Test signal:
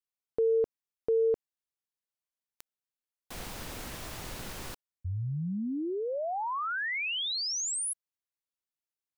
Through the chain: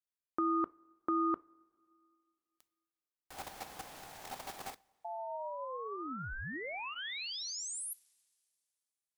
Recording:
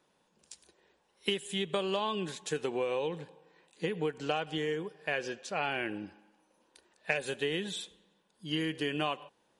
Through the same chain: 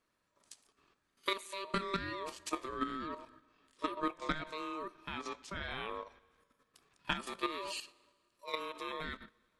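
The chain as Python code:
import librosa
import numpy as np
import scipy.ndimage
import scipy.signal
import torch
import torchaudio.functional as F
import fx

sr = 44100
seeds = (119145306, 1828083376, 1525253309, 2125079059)

y = fx.level_steps(x, sr, step_db=10)
y = fx.notch(y, sr, hz=2100.0, q=20.0)
y = fx.rev_double_slope(y, sr, seeds[0], early_s=0.32, late_s=2.4, knee_db=-18, drr_db=17.5)
y = y * np.sin(2.0 * np.pi * 780.0 * np.arange(len(y)) / sr)
y = y * librosa.db_to_amplitude(2.0)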